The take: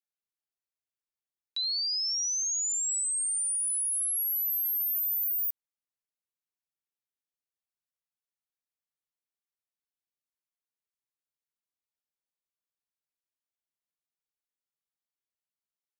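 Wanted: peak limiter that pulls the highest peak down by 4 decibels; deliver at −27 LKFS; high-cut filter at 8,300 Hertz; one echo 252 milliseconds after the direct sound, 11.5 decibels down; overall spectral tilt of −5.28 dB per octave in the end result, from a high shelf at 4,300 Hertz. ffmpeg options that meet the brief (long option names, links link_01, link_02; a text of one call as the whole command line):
ffmpeg -i in.wav -af "lowpass=8300,highshelf=frequency=4300:gain=-5,alimiter=level_in=9.5dB:limit=-24dB:level=0:latency=1,volume=-9.5dB,aecho=1:1:252:0.266,volume=8.5dB" out.wav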